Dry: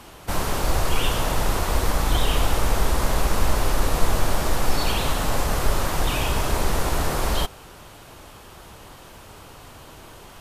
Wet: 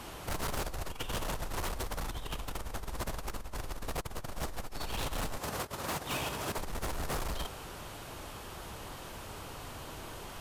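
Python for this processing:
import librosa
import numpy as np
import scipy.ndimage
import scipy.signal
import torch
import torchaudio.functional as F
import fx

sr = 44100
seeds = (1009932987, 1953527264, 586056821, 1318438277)

y = fx.over_compress(x, sr, threshold_db=-24.0, ratio=-0.5)
y = fx.highpass(y, sr, hz=110.0, slope=12, at=(5.38, 6.58))
y = 10.0 ** (-25.0 / 20.0) * np.tanh(y / 10.0 ** (-25.0 / 20.0))
y = y * librosa.db_to_amplitude(-6.0)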